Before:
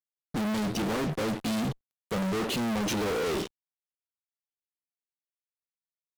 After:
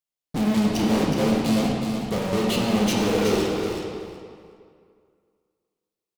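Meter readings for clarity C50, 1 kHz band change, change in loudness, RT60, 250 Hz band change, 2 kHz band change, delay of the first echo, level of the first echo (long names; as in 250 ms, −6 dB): −0.5 dB, +6.0 dB, +7.0 dB, 2.2 s, +9.0 dB, +4.5 dB, 370 ms, −7.0 dB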